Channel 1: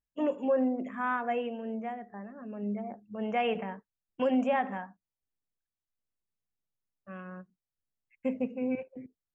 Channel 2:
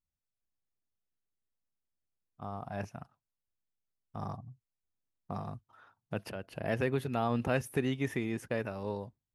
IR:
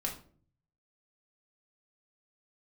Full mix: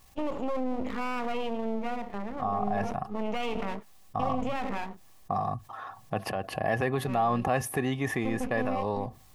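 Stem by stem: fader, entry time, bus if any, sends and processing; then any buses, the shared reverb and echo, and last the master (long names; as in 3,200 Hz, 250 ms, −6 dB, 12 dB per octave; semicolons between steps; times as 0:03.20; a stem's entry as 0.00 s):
+1.5 dB, 0.00 s, no send, brickwall limiter −28 dBFS, peak gain reduction 10 dB; half-wave rectification
−2.0 dB, 0.00 s, no send, hollow resonant body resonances 770/1,100/1,700 Hz, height 16 dB, ringing for 40 ms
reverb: not used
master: parametric band 1,600 Hz −6.5 dB 0.33 octaves; envelope flattener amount 50%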